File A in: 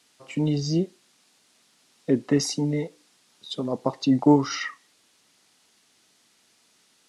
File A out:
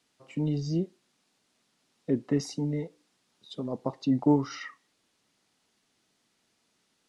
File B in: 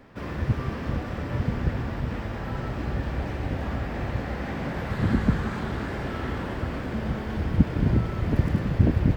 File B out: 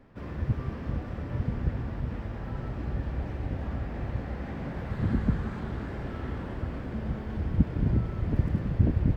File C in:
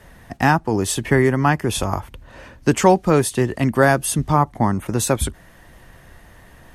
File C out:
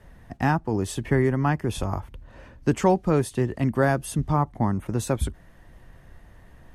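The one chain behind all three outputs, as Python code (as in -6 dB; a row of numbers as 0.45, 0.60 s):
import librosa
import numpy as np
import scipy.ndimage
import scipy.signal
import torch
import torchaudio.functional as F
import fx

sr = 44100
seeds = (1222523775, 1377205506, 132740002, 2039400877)

y = fx.tilt_eq(x, sr, slope=-1.5)
y = F.gain(torch.from_numpy(y), -8.0).numpy()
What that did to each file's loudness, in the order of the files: -5.0, -4.0, -6.0 LU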